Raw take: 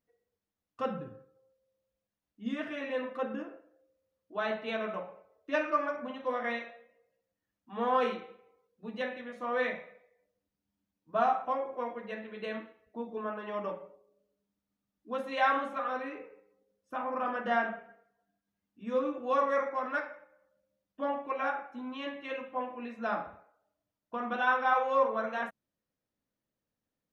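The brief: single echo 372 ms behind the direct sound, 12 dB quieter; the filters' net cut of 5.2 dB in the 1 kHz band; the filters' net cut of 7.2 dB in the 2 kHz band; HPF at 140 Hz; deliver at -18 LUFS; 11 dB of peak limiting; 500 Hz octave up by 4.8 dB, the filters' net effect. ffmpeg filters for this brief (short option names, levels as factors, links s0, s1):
-af "highpass=140,equalizer=f=500:t=o:g=8,equalizer=f=1000:t=o:g=-9,equalizer=f=2000:t=o:g=-6.5,alimiter=level_in=1.06:limit=0.0631:level=0:latency=1,volume=0.944,aecho=1:1:372:0.251,volume=7.5"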